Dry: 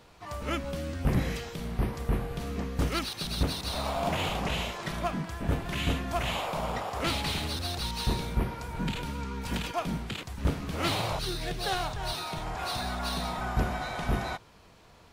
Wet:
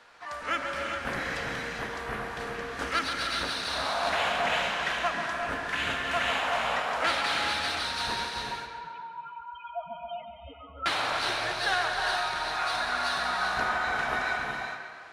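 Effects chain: three-band isolator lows -17 dB, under 470 Hz, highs -16 dB, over 7200 Hz; notches 50/100/150/200/250/300/350/400/450 Hz; 8.26–10.86 loudest bins only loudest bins 2; fifteen-band EQ 250 Hz +6 dB, 1600 Hz +10 dB, 10000 Hz +6 dB; tape echo 0.137 s, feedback 67%, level -7 dB, low-pass 4900 Hz; non-linear reverb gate 0.43 s rising, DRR 2.5 dB

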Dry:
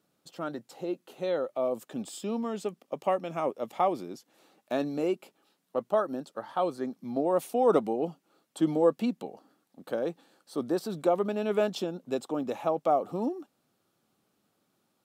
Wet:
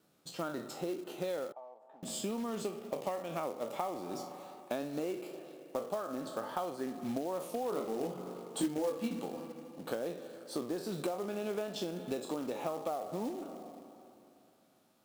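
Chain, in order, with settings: spectral trails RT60 0.37 s; spring tank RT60 2.6 s, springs 39/50 ms, chirp 40 ms, DRR 15.5 dB; compressor 12:1, threshold -35 dBFS, peak gain reduction 19 dB; 7.7–9.2 doubler 22 ms -3 dB; wow and flutter 26 cents; short-mantissa float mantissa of 2-bit; 1.52–2.03 band-pass 850 Hz, Q 7.8; gain +2 dB

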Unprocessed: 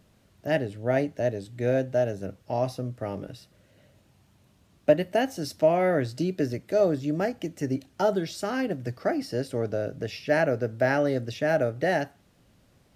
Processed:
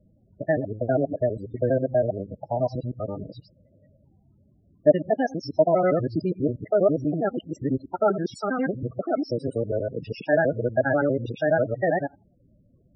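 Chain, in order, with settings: local time reversal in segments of 81 ms; dynamic EQ 1300 Hz, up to +6 dB, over -49 dBFS, Q 3.8; loudest bins only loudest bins 16; gain +2.5 dB

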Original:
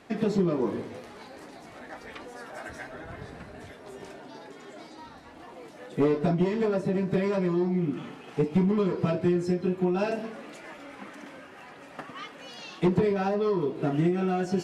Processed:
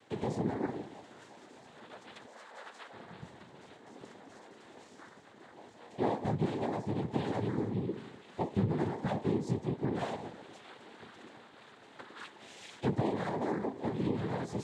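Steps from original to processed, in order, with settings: 2.26–2.91 HPF 510 Hz 12 dB/oct; noise vocoder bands 6; gain -7.5 dB

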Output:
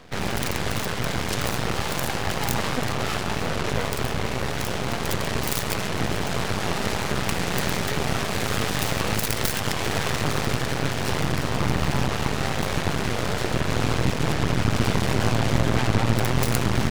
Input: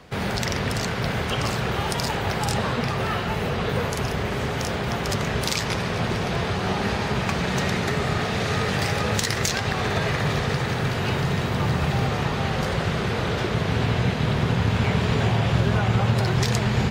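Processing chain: self-modulated delay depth 0.8 ms; half-wave rectifier; record warp 78 rpm, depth 160 cents; gain +4 dB

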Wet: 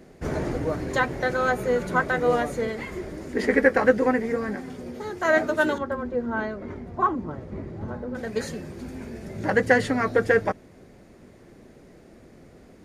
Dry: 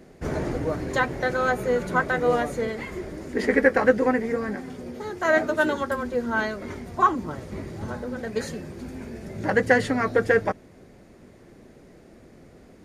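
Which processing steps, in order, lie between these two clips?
5.78–8.15 LPF 1000 Hz 6 dB/oct

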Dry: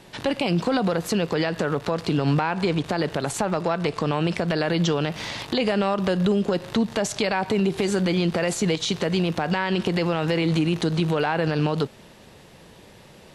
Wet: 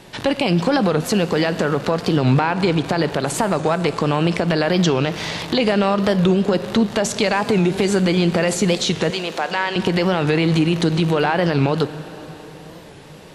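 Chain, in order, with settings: 9.1–9.76 HPF 540 Hz 12 dB/oct; reverb RT60 4.8 s, pre-delay 18 ms, DRR 13 dB; record warp 45 rpm, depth 160 cents; gain +5 dB

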